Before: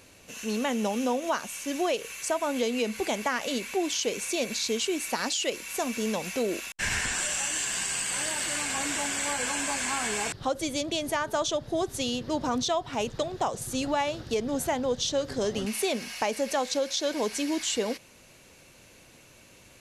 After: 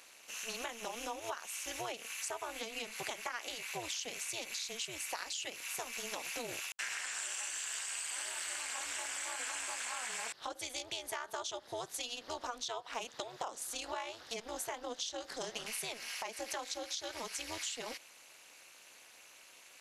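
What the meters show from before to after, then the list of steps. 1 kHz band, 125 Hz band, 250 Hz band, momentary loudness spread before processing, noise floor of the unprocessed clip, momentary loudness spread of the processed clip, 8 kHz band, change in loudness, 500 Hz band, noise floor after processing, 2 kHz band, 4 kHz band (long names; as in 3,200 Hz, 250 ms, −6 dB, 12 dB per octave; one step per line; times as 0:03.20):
−11.0 dB, −19.0 dB, −22.0 dB, 4 LU, −55 dBFS, 6 LU, −8.5 dB, −11.0 dB, −16.0 dB, −59 dBFS, −9.0 dB, −8.5 dB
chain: high-pass filter 790 Hz 12 dB per octave
downward compressor, threshold −36 dBFS, peak gain reduction 11 dB
amplitude modulation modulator 230 Hz, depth 90%
level +2.5 dB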